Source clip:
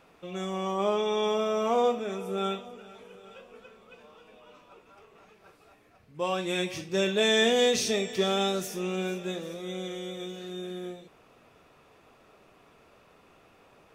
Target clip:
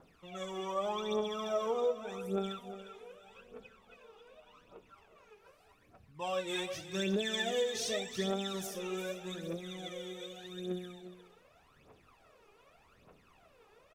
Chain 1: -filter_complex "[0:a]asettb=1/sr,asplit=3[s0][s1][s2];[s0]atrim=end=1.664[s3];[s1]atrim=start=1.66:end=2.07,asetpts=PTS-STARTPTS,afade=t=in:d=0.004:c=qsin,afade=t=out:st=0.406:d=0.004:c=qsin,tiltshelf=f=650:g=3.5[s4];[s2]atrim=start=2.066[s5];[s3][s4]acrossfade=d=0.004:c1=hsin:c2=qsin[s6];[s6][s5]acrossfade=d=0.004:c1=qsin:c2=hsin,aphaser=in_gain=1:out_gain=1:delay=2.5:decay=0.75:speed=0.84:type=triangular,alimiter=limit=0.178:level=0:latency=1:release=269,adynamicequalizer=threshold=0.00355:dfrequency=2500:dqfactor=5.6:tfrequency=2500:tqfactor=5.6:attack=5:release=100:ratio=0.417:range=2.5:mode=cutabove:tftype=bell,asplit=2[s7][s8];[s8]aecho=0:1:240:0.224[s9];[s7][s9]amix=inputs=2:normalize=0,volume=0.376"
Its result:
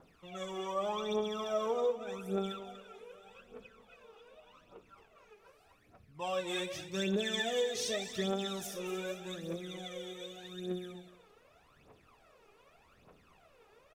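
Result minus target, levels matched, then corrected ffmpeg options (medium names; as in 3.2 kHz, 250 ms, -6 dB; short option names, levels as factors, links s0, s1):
echo 115 ms early
-filter_complex "[0:a]asettb=1/sr,asplit=3[s0][s1][s2];[s0]atrim=end=1.664[s3];[s1]atrim=start=1.66:end=2.07,asetpts=PTS-STARTPTS,afade=t=in:d=0.004:c=qsin,afade=t=out:st=0.406:d=0.004:c=qsin,tiltshelf=f=650:g=3.5[s4];[s2]atrim=start=2.066[s5];[s3][s4]acrossfade=d=0.004:c1=hsin:c2=qsin[s6];[s6][s5]acrossfade=d=0.004:c1=qsin:c2=hsin,aphaser=in_gain=1:out_gain=1:delay=2.5:decay=0.75:speed=0.84:type=triangular,alimiter=limit=0.178:level=0:latency=1:release=269,adynamicequalizer=threshold=0.00355:dfrequency=2500:dqfactor=5.6:tfrequency=2500:tqfactor=5.6:attack=5:release=100:ratio=0.417:range=2.5:mode=cutabove:tftype=bell,asplit=2[s7][s8];[s8]aecho=0:1:355:0.224[s9];[s7][s9]amix=inputs=2:normalize=0,volume=0.376"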